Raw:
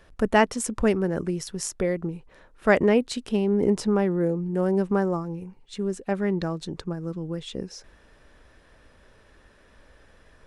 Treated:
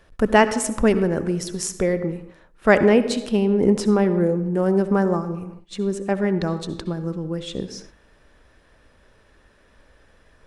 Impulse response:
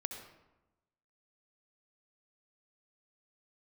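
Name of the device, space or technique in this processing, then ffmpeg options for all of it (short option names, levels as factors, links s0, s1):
keyed gated reverb: -filter_complex "[0:a]asplit=3[s0][s1][s2];[1:a]atrim=start_sample=2205[s3];[s1][s3]afir=irnorm=-1:irlink=0[s4];[s2]apad=whole_len=461352[s5];[s4][s5]sidechaingate=range=0.112:threshold=0.00398:ratio=16:detection=peak,volume=0.944[s6];[s0][s6]amix=inputs=2:normalize=0,volume=0.891"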